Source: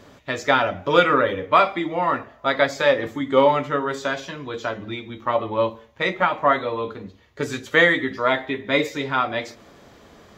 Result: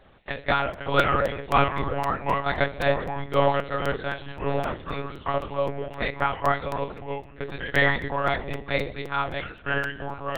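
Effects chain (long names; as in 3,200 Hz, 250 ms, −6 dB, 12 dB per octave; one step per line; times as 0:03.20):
mains-hum notches 60/120/180/240/300/360/420 Hz
delay with pitch and tempo change per echo 453 ms, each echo −3 semitones, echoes 2, each echo −6 dB
low-shelf EQ 130 Hz −11.5 dB
one-pitch LPC vocoder at 8 kHz 140 Hz
regular buffer underruns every 0.26 s, samples 256, repeat, from 0:00.73
level −4.5 dB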